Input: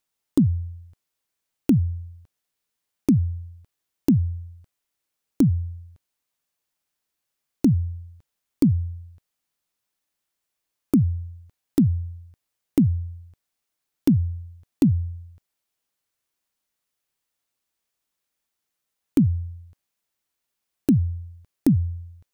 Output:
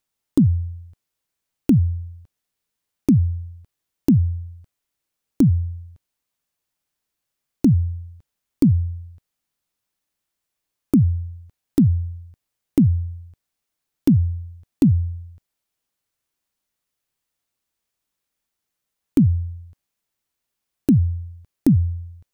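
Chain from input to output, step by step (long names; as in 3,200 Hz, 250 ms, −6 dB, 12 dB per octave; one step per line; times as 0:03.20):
low-shelf EQ 240 Hz +5 dB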